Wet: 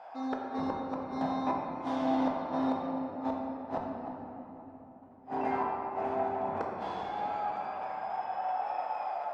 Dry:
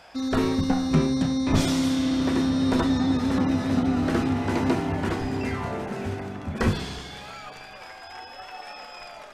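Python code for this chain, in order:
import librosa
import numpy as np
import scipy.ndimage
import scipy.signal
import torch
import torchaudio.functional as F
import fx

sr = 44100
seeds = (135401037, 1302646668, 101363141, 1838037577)

y = fx.bandpass_q(x, sr, hz=800.0, q=4.2)
y = fx.gate_flip(y, sr, shuts_db=-30.0, range_db=-38)
y = fx.room_shoebox(y, sr, seeds[0], volume_m3=220.0, walls='hard', distance_m=0.6)
y = F.gain(torch.from_numpy(y), 8.0).numpy()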